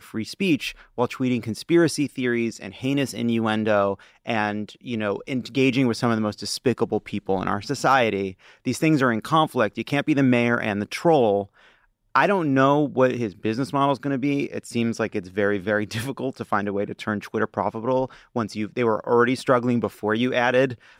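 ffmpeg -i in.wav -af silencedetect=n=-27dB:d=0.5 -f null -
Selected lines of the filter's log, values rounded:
silence_start: 11.43
silence_end: 12.15 | silence_duration: 0.72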